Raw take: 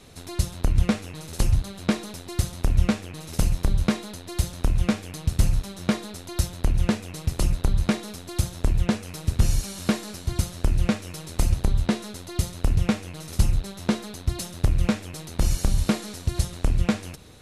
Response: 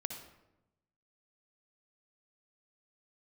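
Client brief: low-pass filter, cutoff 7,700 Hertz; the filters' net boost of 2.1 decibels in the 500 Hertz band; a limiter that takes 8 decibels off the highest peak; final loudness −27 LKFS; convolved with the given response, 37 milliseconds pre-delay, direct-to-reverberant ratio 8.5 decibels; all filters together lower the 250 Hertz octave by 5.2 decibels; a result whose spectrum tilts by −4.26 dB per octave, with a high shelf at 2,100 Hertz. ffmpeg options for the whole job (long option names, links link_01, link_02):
-filter_complex "[0:a]lowpass=7700,equalizer=frequency=250:width_type=o:gain=-8,equalizer=frequency=500:width_type=o:gain=4.5,highshelf=frequency=2100:gain=6.5,alimiter=limit=-13.5dB:level=0:latency=1,asplit=2[link_01][link_02];[1:a]atrim=start_sample=2205,adelay=37[link_03];[link_02][link_03]afir=irnorm=-1:irlink=0,volume=-8dB[link_04];[link_01][link_04]amix=inputs=2:normalize=0,volume=1.5dB"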